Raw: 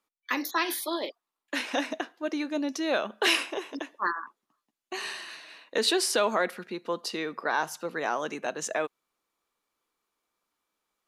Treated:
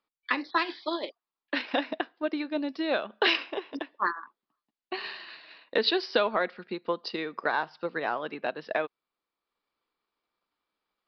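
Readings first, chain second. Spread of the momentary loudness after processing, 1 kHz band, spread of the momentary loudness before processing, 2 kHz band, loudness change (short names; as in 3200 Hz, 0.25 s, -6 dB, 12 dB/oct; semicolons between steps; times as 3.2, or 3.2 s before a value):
12 LU, 0.0 dB, 12 LU, 0.0 dB, -0.5 dB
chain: downsampling 11025 Hz; transient shaper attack +5 dB, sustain -4 dB; gain -2 dB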